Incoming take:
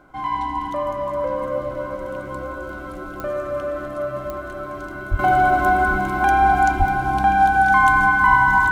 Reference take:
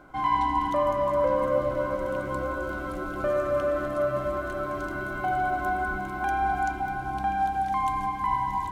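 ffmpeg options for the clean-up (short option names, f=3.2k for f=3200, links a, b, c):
-filter_complex "[0:a]adeclick=t=4,bandreject=f=1.5k:w=30,asplit=3[a][b][c];[a]afade=t=out:st=5.1:d=0.02[d];[b]highpass=f=140:w=0.5412,highpass=f=140:w=1.3066,afade=t=in:st=5.1:d=0.02,afade=t=out:st=5.22:d=0.02[e];[c]afade=t=in:st=5.22:d=0.02[f];[d][e][f]amix=inputs=3:normalize=0,asplit=3[g][h][i];[g]afade=t=out:st=6.78:d=0.02[j];[h]highpass=f=140:w=0.5412,highpass=f=140:w=1.3066,afade=t=in:st=6.78:d=0.02,afade=t=out:st=6.9:d=0.02[k];[i]afade=t=in:st=6.9:d=0.02[l];[j][k][l]amix=inputs=3:normalize=0,asetnsamples=n=441:p=0,asendcmd='5.19 volume volume -10.5dB',volume=0dB"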